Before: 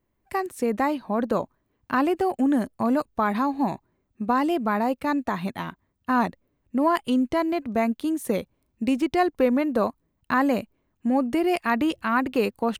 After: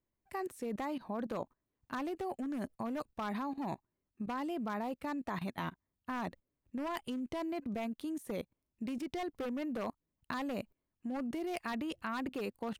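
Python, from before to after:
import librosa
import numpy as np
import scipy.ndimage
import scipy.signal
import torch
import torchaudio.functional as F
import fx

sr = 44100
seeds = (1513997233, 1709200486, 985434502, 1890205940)

y = 10.0 ** (-16.0 / 20.0) * (np.abs((x / 10.0 ** (-16.0 / 20.0) + 3.0) % 4.0 - 2.0) - 1.0)
y = fx.level_steps(y, sr, step_db=17)
y = y * librosa.db_to_amplitude(-3.0)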